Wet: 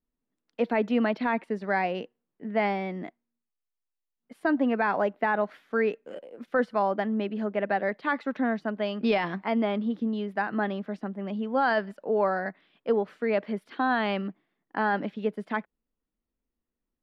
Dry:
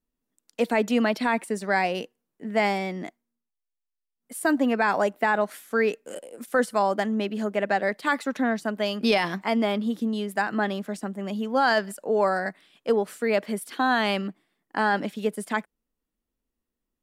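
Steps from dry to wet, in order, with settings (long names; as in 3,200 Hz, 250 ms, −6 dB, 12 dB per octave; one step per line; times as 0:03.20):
high-frequency loss of the air 300 metres
level −1.5 dB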